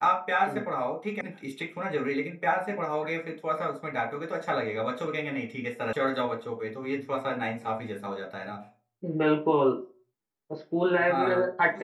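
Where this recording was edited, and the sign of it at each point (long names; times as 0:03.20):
0:01.21: cut off before it has died away
0:05.93: cut off before it has died away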